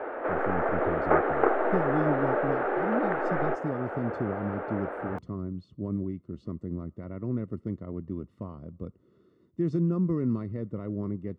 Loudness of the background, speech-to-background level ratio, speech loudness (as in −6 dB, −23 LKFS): −28.5 LKFS, −5.0 dB, −33.5 LKFS